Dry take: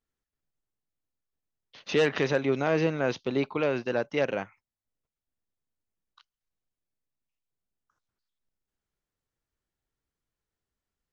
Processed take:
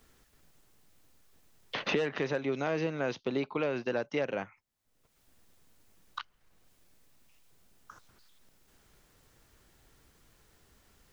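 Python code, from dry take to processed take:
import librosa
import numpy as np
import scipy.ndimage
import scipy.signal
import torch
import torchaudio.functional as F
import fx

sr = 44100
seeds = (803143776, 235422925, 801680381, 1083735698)

y = fx.band_squash(x, sr, depth_pct=100)
y = F.gain(torch.from_numpy(y), -5.5).numpy()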